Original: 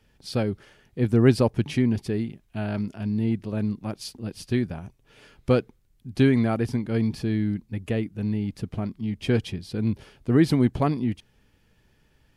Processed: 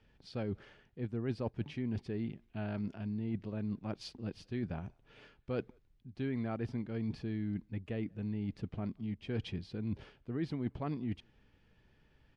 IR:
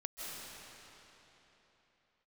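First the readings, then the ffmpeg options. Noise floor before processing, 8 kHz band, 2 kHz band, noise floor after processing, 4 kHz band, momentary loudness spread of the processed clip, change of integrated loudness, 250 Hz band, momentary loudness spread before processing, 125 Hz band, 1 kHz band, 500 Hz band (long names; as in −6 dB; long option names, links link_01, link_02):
−64 dBFS, below −20 dB, −14.5 dB, −69 dBFS, −13.5 dB, 7 LU, −14.0 dB, −14.0 dB, 13 LU, −13.5 dB, −14.0 dB, −15.0 dB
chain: -filter_complex "[0:a]lowpass=3900,areverse,acompressor=threshold=-30dB:ratio=5,areverse,asplit=2[link_01][link_02];[link_02]adelay=180,highpass=300,lowpass=3400,asoftclip=type=hard:threshold=-30.5dB,volume=-30dB[link_03];[link_01][link_03]amix=inputs=2:normalize=0,volume=-4.5dB"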